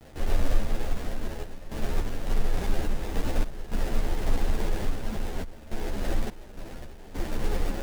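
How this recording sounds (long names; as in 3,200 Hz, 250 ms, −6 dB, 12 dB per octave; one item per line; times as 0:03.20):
aliases and images of a low sample rate 1,200 Hz, jitter 20%
sample-and-hold tremolo, depth 90%
a quantiser's noise floor 8 bits, dither none
a shimmering, thickened sound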